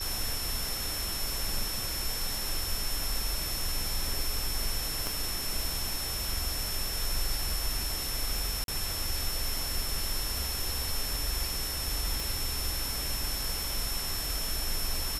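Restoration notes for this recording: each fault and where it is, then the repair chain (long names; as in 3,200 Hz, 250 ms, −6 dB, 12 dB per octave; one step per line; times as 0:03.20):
whistle 5,400 Hz −36 dBFS
0:05.07: click
0:08.64–0:08.68: drop-out 42 ms
0:12.20: click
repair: click removal
notch filter 5,400 Hz, Q 30
repair the gap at 0:08.64, 42 ms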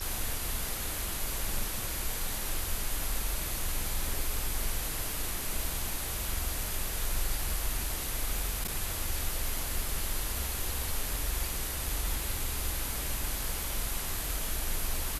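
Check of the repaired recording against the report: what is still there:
0:05.07: click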